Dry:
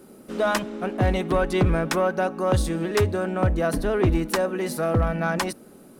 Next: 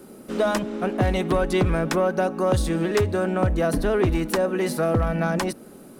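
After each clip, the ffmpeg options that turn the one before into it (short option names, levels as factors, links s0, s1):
-filter_complex "[0:a]acrossover=split=670|4200[s0][s1][s2];[s0]acompressor=threshold=0.0794:ratio=4[s3];[s1]acompressor=threshold=0.0282:ratio=4[s4];[s2]acompressor=threshold=0.0126:ratio=4[s5];[s3][s4][s5]amix=inputs=3:normalize=0,volume=1.5"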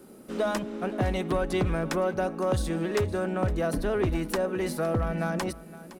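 -af "aecho=1:1:513:0.133,volume=0.531"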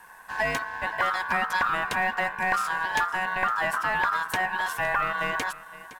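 -af "acrusher=bits=9:mode=log:mix=0:aa=0.000001,aeval=exprs='val(0)*sin(2*PI*1300*n/s)':c=same,volume=1.5"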